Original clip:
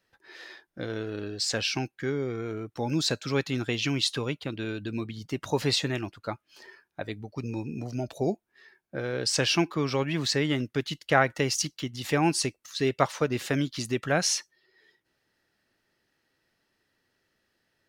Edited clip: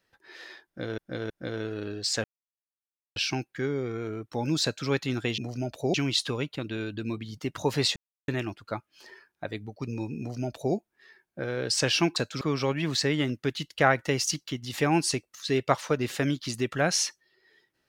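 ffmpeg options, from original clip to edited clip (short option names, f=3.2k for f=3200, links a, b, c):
-filter_complex "[0:a]asplit=9[a][b][c][d][e][f][g][h][i];[a]atrim=end=0.982[j];[b]atrim=start=0.658:end=0.982[k];[c]atrim=start=0.658:end=1.6,asetpts=PTS-STARTPTS,afade=t=out:st=0.938:d=0.004:c=hsin,apad=pad_dur=0.92[l];[d]atrim=start=1.6:end=3.822,asetpts=PTS-STARTPTS,afade=t=in:d=0.004:c=hsin[m];[e]atrim=start=7.748:end=8.312[n];[f]atrim=start=3.818:end=5.84,asetpts=PTS-STARTPTS,afade=t=out:st=2.018:d=0.004:c=hsin,apad=pad_dur=0.32[o];[g]atrim=start=5.84:end=9.722,asetpts=PTS-STARTPTS,afade=t=in:d=0.004:c=hsin[p];[h]atrim=start=3.068:end=3.322[q];[i]atrim=start=9.718[r];[j][k]acrossfade=d=0.004:c1=hsin:c2=hsin[s];[l][m]concat=n=2:v=0:a=1[t];[s][t]acrossfade=d=0.004:c1=hsin:c2=hsin[u];[u][n]acrossfade=d=0.004:c1=hsin:c2=hsin[v];[o][p]concat=n=2:v=0:a=1[w];[v][w]acrossfade=d=0.004:c1=hsin:c2=hsin[x];[x][q]acrossfade=d=0.004:c1=hsin:c2=hsin[y];[y][r]acrossfade=d=0.004:c1=hsin:c2=hsin"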